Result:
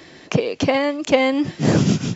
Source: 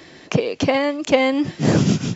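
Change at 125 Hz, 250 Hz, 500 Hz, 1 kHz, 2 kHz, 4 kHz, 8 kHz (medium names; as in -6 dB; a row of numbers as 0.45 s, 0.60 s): 0.0 dB, 0.0 dB, 0.0 dB, 0.0 dB, 0.0 dB, 0.0 dB, no reading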